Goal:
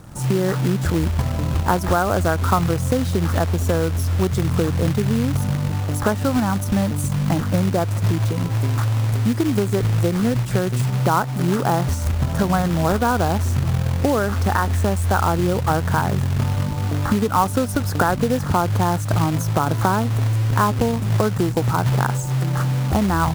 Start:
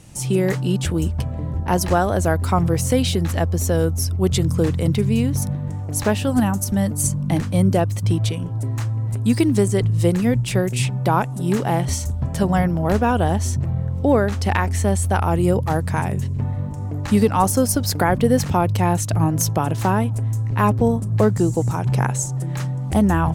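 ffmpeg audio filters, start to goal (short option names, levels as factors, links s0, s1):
-af "acompressor=threshold=0.1:ratio=12,highshelf=f=1900:t=q:w=3:g=-10.5,acrusher=bits=3:mode=log:mix=0:aa=0.000001,volume=1.68"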